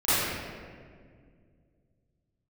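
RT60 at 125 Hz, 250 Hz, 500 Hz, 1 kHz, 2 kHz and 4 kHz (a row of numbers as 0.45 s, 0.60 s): 3.4 s, 2.9 s, 2.3 s, 1.7 s, 1.6 s, 1.1 s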